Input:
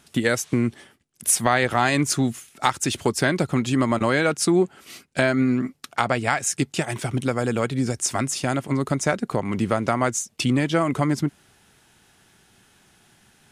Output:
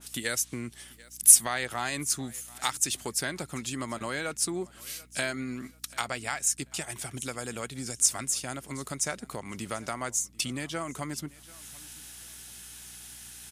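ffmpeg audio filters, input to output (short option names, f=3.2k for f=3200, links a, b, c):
-filter_complex "[0:a]crystalizer=i=9:c=0,acompressor=mode=upward:threshold=-18dB:ratio=2.5,aeval=exprs='val(0)+0.00891*(sin(2*PI*60*n/s)+sin(2*PI*2*60*n/s)/2+sin(2*PI*3*60*n/s)/3+sin(2*PI*4*60*n/s)/4+sin(2*PI*5*60*n/s)/5)':c=same,asplit=2[a][b];[b]aecho=0:1:738|1476:0.0708|0.0212[c];[a][c]amix=inputs=2:normalize=0,adynamicequalizer=threshold=0.0398:dfrequency=1800:dqfactor=0.7:tfrequency=1800:tqfactor=0.7:attack=5:release=100:ratio=0.375:range=4:mode=cutabove:tftype=highshelf,volume=-16dB"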